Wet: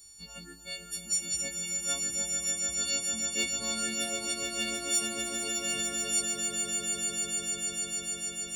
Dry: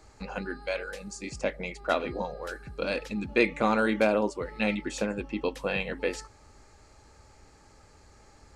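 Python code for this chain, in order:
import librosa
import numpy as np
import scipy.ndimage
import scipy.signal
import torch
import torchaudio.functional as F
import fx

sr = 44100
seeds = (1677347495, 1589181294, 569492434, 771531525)

p1 = fx.freq_snap(x, sr, grid_st=4)
p2 = fx.graphic_eq_10(p1, sr, hz=(500, 1000, 2000), db=(-8, -12, -8))
p3 = np.clip(p2, -10.0 ** (-24.5 / 20.0), 10.0 ** (-24.5 / 20.0))
p4 = p2 + (p3 * 10.0 ** (-6.0 / 20.0))
p5 = librosa.effects.preemphasis(p4, coef=0.8, zi=[0.0])
y = fx.echo_swell(p5, sr, ms=149, loudest=8, wet_db=-7)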